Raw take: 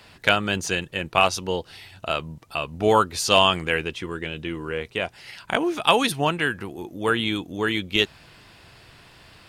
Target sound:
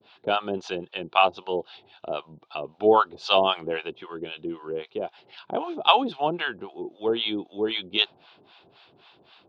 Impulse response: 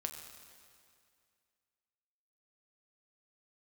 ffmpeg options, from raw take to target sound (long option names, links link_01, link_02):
-filter_complex "[0:a]adynamicequalizer=threshold=0.0316:dfrequency=750:dqfactor=1.1:tfrequency=750:tqfactor=1.1:attack=5:release=100:ratio=0.375:range=2.5:mode=boostabove:tftype=bell,acrossover=split=690[link_01][link_02];[link_01]aeval=exprs='val(0)*(1-1/2+1/2*cos(2*PI*3.8*n/s))':channel_layout=same[link_03];[link_02]aeval=exprs='val(0)*(1-1/2-1/2*cos(2*PI*3.8*n/s))':channel_layout=same[link_04];[link_03][link_04]amix=inputs=2:normalize=0,highpass=210,equalizer=frequency=380:width_type=q:width=4:gain=6,equalizer=frequency=790:width_type=q:width=4:gain=5,equalizer=frequency=1900:width_type=q:width=4:gain=-10,equalizer=frequency=3600:width_type=q:width=4:gain=7,lowpass=frequency=4000:width=0.5412,lowpass=frequency=4000:width=1.3066,volume=-1dB"